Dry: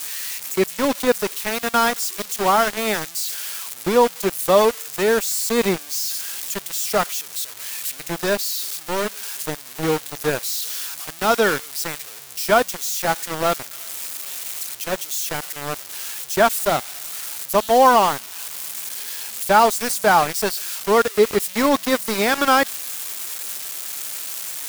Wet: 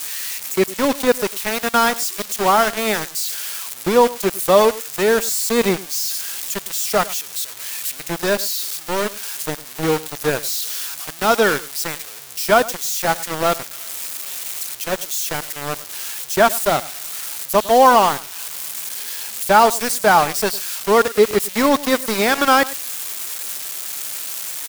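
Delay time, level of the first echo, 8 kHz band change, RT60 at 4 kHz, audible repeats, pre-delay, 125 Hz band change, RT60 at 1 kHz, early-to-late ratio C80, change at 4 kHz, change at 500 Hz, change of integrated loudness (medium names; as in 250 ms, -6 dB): 103 ms, -19.0 dB, +2.0 dB, no reverb, 1, no reverb, +2.0 dB, no reverb, no reverb, +2.0 dB, +2.0 dB, +2.0 dB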